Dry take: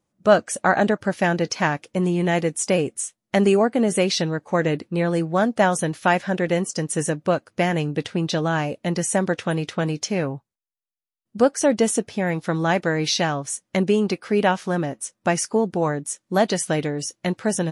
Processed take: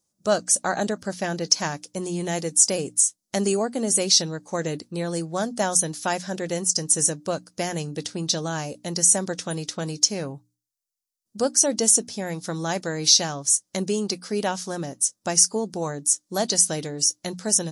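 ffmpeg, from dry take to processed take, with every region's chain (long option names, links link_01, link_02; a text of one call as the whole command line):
ffmpeg -i in.wav -filter_complex "[0:a]asettb=1/sr,asplit=3[link_01][link_02][link_03];[link_01]atrim=end=0.894[link_04];[link_02]atrim=start=0.89:end=1.46,asetpts=PTS-STARTPTS,afade=type=in:duration=0.004:curve=qsin,afade=type=out:start_time=0.566:duration=0.004:curve=qsin,acrossover=split=4400[link_05][link_06];[link_06]acompressor=threshold=-49dB:ratio=4:attack=1:release=60[link_07];[link_05][link_07]amix=inputs=2:normalize=0,bandreject=frequency=880:width=23[link_08];[link_03]atrim=start=1.456[link_09];[link_04][link_08]acrossfade=duration=0.004:curve1=hsin:curve2=qsin[link_10];[link_10][link_09]acrossfade=duration=0.004:curve1=qsin:curve2=hsin,highshelf=frequency=3700:width_type=q:width=1.5:gain=13.5,bandreject=frequency=60:width_type=h:width=6,bandreject=frequency=120:width_type=h:width=6,bandreject=frequency=180:width_type=h:width=6,bandreject=frequency=240:width_type=h:width=6,bandreject=frequency=300:width_type=h:width=6,volume=-6dB" out.wav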